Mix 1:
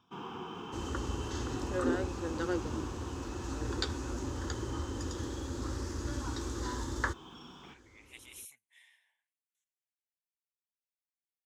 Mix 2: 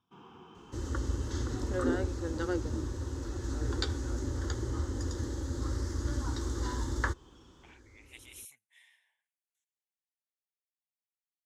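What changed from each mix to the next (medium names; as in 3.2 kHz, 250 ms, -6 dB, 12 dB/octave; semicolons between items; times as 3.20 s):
first sound -11.5 dB; master: add bass shelf 120 Hz +7 dB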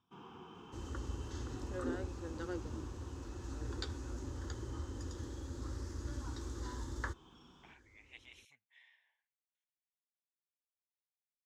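speech: add distance through air 200 m; second sound -9.0 dB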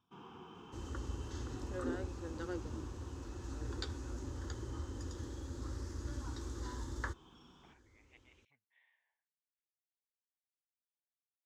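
speech: add tape spacing loss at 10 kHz 40 dB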